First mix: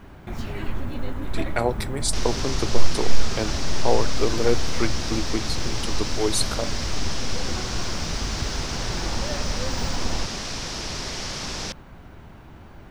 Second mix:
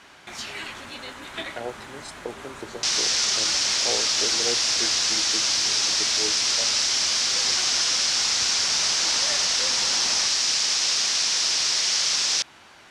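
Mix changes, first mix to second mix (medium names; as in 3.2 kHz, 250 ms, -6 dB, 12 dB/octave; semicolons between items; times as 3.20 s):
speech: add boxcar filter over 38 samples; second sound: entry +0.70 s; master: add frequency weighting ITU-R 468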